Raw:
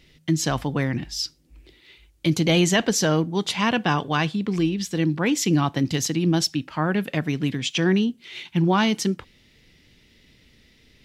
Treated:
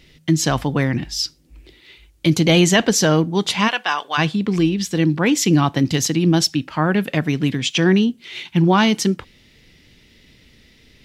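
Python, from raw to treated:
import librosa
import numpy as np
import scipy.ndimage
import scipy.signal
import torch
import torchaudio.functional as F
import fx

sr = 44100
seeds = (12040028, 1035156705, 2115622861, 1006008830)

y = fx.highpass(x, sr, hz=880.0, slope=12, at=(3.67, 4.17), fade=0.02)
y = y * 10.0 ** (5.0 / 20.0)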